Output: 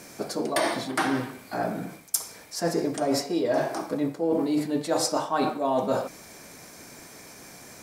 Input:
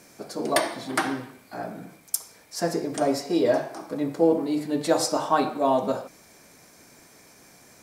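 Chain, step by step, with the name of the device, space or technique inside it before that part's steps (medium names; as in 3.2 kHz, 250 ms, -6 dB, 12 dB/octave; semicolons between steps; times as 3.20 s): compression on the reversed sound (reverse; compression 10:1, threshold -28 dBFS, peak gain reduction 14.5 dB; reverse); trim +6.5 dB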